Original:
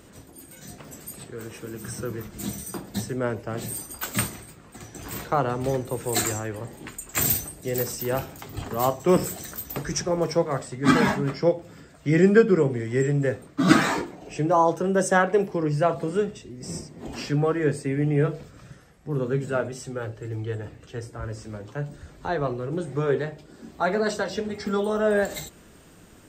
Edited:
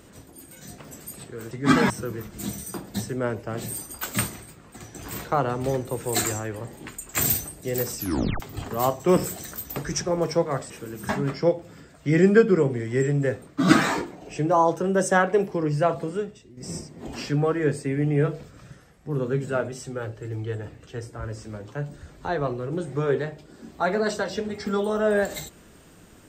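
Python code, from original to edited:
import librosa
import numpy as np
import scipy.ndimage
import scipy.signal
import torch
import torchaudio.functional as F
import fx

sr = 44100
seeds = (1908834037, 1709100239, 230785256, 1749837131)

y = fx.edit(x, sr, fx.swap(start_s=1.51, length_s=0.39, other_s=10.7, other_length_s=0.39),
    fx.tape_stop(start_s=7.97, length_s=0.43),
    fx.fade_out_to(start_s=15.96, length_s=0.61, curve='qua', floor_db=-9.0), tone=tone)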